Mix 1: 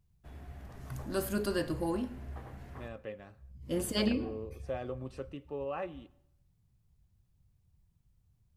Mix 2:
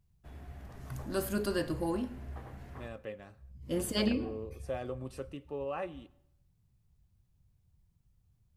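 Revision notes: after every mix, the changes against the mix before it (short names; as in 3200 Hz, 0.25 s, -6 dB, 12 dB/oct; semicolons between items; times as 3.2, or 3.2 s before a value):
second voice: remove air absorption 73 m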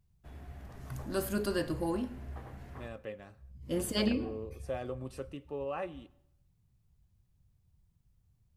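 none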